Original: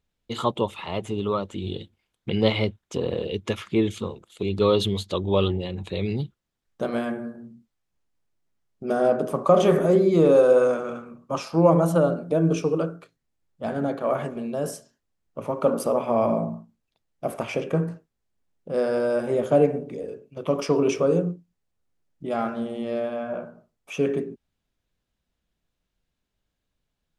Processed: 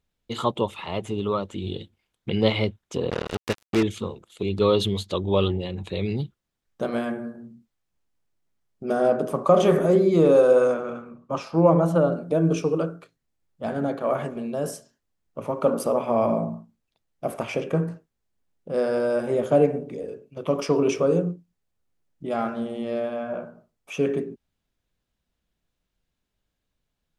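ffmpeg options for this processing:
-filter_complex "[0:a]asettb=1/sr,asplit=3[a][b][c];[a]atrim=end=3.104[d];[b]atrim=start=3.1:end=3.83,asetpts=PTS-STARTPTS,afade=t=in:d=0.004:c=qsin,afade=t=out:st=0.726:d=0.004:c=qsin,acrusher=bits=3:mix=0:aa=0.5[e];[c]atrim=start=3.826[f];[d][e]acrossfade=d=0.004:c1=hsin:c2=qsin[g];[g][f]acrossfade=d=0.004:c1=qsin:c2=hsin,asettb=1/sr,asplit=3[h][i][j];[h]atrim=end=10.734[k];[i]atrim=start=10.73:end=12.12,asetpts=PTS-STARTPTS,afade=t=in:d=0.004:c=qsin,afade=t=out:st=1.386:d=0.004:c=qsin,lowpass=f=3.3k:p=1[l];[j]atrim=start=12.116[m];[k][l]acrossfade=d=0.004:c1=hsin:c2=qsin[n];[n][m]acrossfade=d=0.004:c1=qsin:c2=hsin"

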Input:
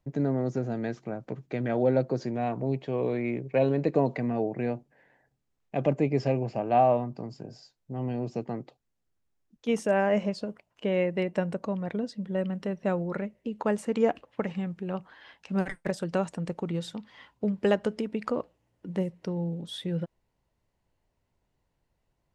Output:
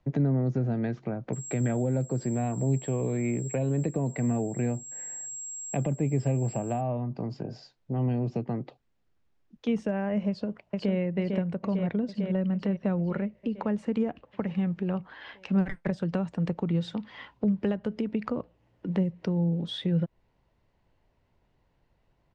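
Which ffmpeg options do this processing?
-filter_complex "[0:a]asettb=1/sr,asplit=3[a][b][c];[a]atrim=end=1.334[d];[b]atrim=start=1.33:end=6.81,asetpts=PTS-STARTPTS,afade=t=in:d=0.004:c=qsin,afade=t=out:st=5.476:d=0.004:c=qsin,aeval=exprs='val(0)+0.0316*sin(2*PI*7600*n/s)':c=same[e];[c]atrim=start=6.806[f];[d][e]acrossfade=d=0.004:c1=hsin:c2=qsin[g];[g][f]acrossfade=d=0.004:c1=qsin:c2=hsin,asplit=2[h][i];[i]afade=t=in:st=10.28:d=0.01,afade=t=out:st=10.96:d=0.01,aecho=0:1:450|900|1350|1800|2250|2700|3150|3600|4050|4500:0.630957|0.410122|0.266579|0.173277|0.11263|0.0732094|0.0475861|0.030931|0.0201051|0.0130683[j];[h][j]amix=inputs=2:normalize=0,lowpass=4k,alimiter=limit=-16dB:level=0:latency=1:release=358,acrossover=split=210[k][l];[l]acompressor=threshold=-40dB:ratio=4[m];[k][m]amix=inputs=2:normalize=0,volume=7dB"

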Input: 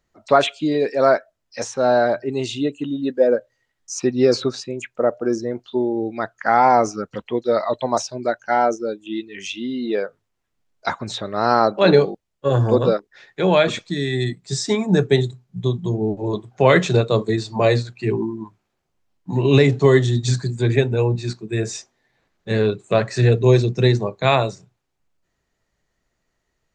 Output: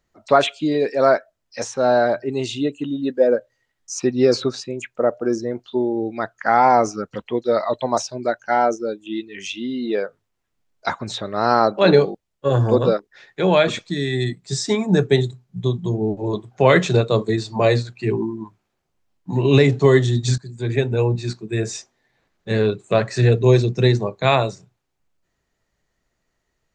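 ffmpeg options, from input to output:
-filter_complex "[0:a]asplit=2[a][b];[a]atrim=end=20.38,asetpts=PTS-STARTPTS,afade=t=out:st=20.376:d=0.004:c=hsin:silence=0.11885[c];[b]atrim=start=20.38,asetpts=PTS-STARTPTS,afade=t=in:d=0.58:silence=0.11885[d];[c][d]concat=n=2:v=0:a=1"

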